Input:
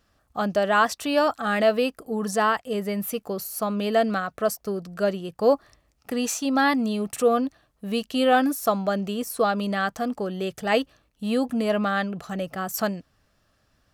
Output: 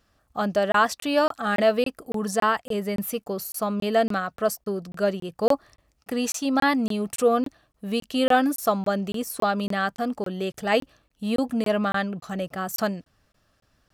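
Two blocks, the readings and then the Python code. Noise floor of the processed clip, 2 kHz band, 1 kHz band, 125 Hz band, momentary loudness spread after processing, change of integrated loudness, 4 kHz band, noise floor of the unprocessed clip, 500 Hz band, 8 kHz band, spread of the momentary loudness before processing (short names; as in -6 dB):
under -85 dBFS, -0.5 dB, -0.5 dB, 0.0 dB, 9 LU, -0.5 dB, -0.5 dB, -68 dBFS, -0.5 dB, -0.5 dB, 9 LU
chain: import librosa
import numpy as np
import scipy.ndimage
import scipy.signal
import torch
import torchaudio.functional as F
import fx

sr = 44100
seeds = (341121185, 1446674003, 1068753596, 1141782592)

y = fx.buffer_crackle(x, sr, first_s=0.72, period_s=0.28, block=1024, kind='zero')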